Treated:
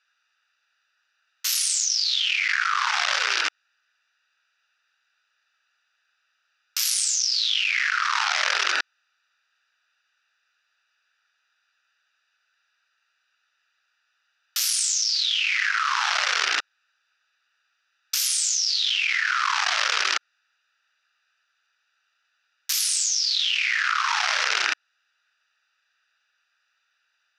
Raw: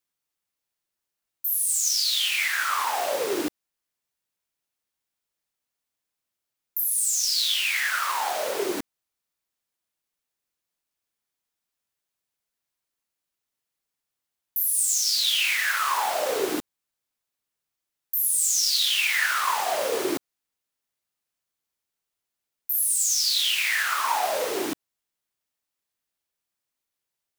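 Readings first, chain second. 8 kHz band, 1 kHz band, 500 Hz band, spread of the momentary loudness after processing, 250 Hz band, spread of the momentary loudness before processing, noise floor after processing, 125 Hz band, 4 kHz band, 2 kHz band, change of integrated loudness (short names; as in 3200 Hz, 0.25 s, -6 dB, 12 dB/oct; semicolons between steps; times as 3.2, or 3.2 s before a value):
0.0 dB, +0.5 dB, -14.0 dB, 5 LU, under -20 dB, 10 LU, -74 dBFS, n/a, +2.5 dB, +4.0 dB, +1.0 dB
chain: Wiener smoothing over 41 samples; Chebyshev band-pass 1300–5700 Hz, order 3; fast leveller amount 100%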